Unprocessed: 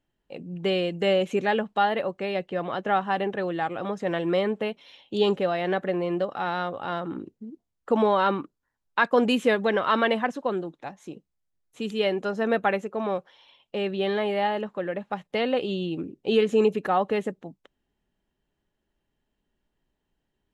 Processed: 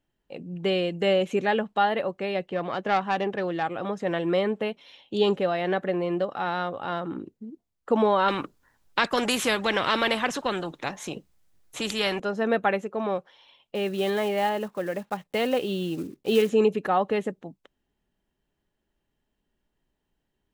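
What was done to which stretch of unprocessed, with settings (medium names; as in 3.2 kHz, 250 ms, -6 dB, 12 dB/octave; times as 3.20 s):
2.42–3.63 s: self-modulated delay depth 0.098 ms
8.28–12.20 s: spectrum-flattening compressor 2:1
13.75–16.50 s: block-companded coder 5-bit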